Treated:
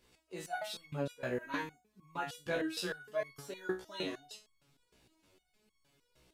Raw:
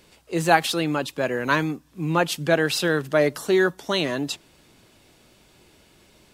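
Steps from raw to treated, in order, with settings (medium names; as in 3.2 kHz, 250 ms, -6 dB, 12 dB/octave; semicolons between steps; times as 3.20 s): chorus voices 6, 0.79 Hz, delay 18 ms, depth 4.2 ms; resonator arpeggio 6.5 Hz 62–1100 Hz; trim -2 dB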